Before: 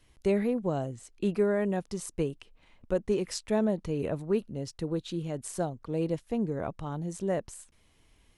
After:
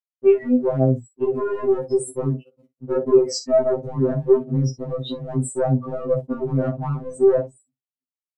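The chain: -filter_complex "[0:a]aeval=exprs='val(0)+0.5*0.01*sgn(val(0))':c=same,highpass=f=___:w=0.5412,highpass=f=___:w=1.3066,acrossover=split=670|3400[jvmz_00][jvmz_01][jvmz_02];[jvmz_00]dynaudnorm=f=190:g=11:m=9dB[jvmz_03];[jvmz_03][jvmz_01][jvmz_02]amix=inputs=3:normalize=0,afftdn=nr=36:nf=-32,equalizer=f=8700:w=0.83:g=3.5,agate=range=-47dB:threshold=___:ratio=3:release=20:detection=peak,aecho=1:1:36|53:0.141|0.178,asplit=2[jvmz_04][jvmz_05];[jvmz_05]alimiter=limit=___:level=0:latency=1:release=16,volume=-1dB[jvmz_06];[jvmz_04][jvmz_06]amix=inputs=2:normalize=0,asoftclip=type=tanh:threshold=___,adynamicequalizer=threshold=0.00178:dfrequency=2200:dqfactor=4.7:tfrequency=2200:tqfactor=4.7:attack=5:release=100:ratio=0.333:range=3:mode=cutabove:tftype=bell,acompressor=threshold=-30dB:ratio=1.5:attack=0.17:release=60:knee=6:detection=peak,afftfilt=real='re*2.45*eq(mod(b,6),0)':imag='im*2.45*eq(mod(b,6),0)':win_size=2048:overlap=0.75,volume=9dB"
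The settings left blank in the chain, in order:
140, 140, -48dB, -15.5dB, -8dB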